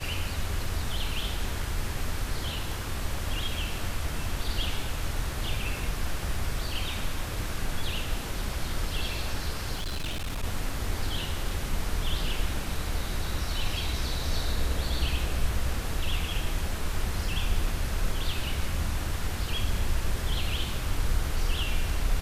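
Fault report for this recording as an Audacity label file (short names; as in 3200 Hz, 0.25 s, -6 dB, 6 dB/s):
9.750000	10.440000	clipped -28 dBFS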